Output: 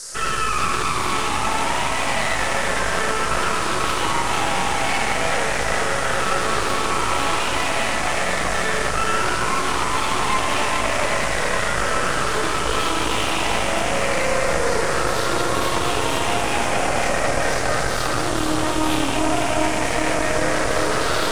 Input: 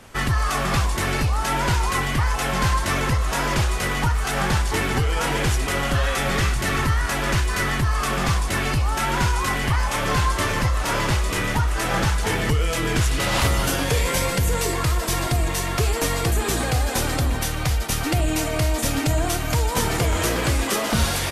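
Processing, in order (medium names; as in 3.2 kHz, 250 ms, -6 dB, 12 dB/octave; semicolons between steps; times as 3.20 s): drifting ripple filter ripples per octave 0.57, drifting -0.34 Hz, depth 15 dB; three-band isolator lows -14 dB, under 320 Hz, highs -24 dB, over 3.7 kHz; algorithmic reverb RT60 0.9 s, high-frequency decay 0.85×, pre-delay 30 ms, DRR -8.5 dB; peak limiter -10.5 dBFS, peak gain reduction 11 dB; treble shelf 9.5 kHz +10 dB; on a send: feedback echo behind a low-pass 402 ms, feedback 82%, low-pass 1.2 kHz, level -5 dB; on the sum: half-wave rectifier; band noise 4.6–10 kHz -35 dBFS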